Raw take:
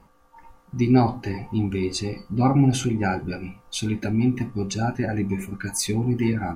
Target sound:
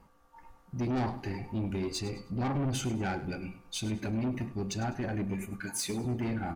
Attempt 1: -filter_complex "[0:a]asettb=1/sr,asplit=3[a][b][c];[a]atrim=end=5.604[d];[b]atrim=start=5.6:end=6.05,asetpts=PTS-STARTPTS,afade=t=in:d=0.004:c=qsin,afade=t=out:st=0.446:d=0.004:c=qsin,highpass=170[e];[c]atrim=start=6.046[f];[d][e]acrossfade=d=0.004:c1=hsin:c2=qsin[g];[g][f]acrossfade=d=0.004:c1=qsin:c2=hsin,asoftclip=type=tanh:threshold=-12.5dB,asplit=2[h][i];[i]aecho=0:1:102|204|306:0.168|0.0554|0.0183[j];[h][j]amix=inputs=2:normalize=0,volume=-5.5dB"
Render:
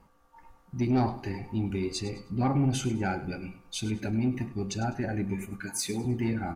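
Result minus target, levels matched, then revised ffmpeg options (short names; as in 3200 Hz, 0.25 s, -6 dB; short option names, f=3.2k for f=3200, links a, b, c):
soft clip: distortion -9 dB
-filter_complex "[0:a]asettb=1/sr,asplit=3[a][b][c];[a]atrim=end=5.604[d];[b]atrim=start=5.6:end=6.05,asetpts=PTS-STARTPTS,afade=t=in:d=0.004:c=qsin,afade=t=out:st=0.446:d=0.004:c=qsin,highpass=170[e];[c]atrim=start=6.046[f];[d][e]acrossfade=d=0.004:c1=hsin:c2=qsin[g];[g][f]acrossfade=d=0.004:c1=qsin:c2=hsin,asoftclip=type=tanh:threshold=-22dB,asplit=2[h][i];[i]aecho=0:1:102|204|306:0.168|0.0554|0.0183[j];[h][j]amix=inputs=2:normalize=0,volume=-5.5dB"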